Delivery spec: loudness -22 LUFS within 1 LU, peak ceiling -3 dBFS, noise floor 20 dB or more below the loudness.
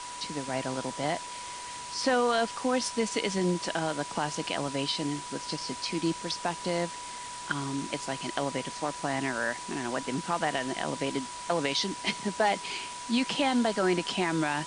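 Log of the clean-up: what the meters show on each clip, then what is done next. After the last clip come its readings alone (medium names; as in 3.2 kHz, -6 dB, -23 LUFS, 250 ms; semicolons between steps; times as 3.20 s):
steady tone 980 Hz; tone level -40 dBFS; noise floor -40 dBFS; noise floor target -51 dBFS; loudness -30.5 LUFS; peak level -11.5 dBFS; loudness target -22.0 LUFS
-> band-stop 980 Hz, Q 30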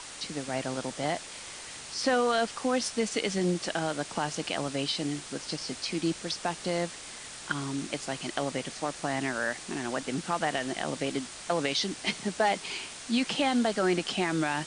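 steady tone not found; noise floor -44 dBFS; noise floor target -51 dBFS
-> noise reduction 7 dB, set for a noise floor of -44 dBFS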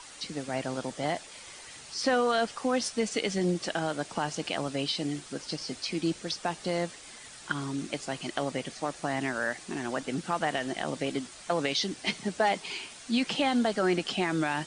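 noise floor -48 dBFS; noise floor target -51 dBFS
-> noise reduction 6 dB, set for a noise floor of -48 dBFS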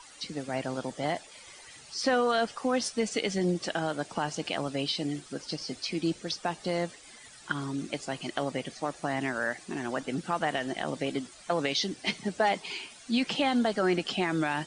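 noise floor -51 dBFS; loudness -31.0 LUFS; peak level -12.5 dBFS; loudness target -22.0 LUFS
-> trim +9 dB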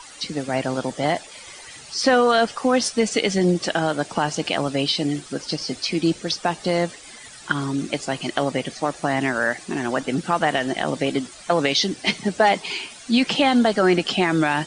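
loudness -22.0 LUFS; peak level -3.5 dBFS; noise floor -42 dBFS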